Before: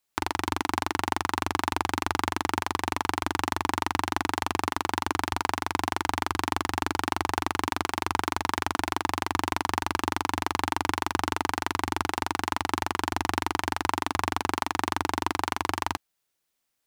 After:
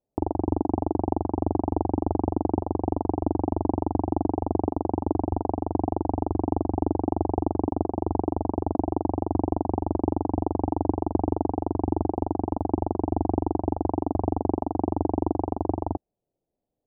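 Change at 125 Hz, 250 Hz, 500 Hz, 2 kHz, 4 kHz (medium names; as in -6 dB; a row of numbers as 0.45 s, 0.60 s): +8.5 dB, +8.5 dB, +8.0 dB, under -35 dB, under -40 dB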